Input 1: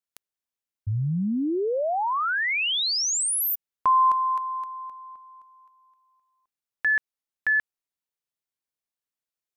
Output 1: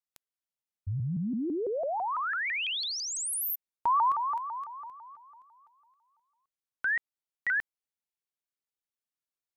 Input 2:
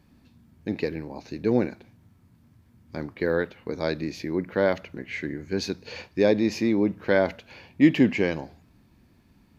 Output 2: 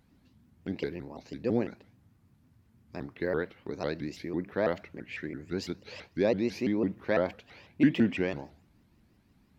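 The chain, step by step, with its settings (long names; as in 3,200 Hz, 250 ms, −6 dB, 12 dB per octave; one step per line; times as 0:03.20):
dynamic equaliser 5,900 Hz, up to −4 dB, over −43 dBFS, Q 1.1
pitch modulation by a square or saw wave saw up 6 Hz, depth 250 cents
level −6 dB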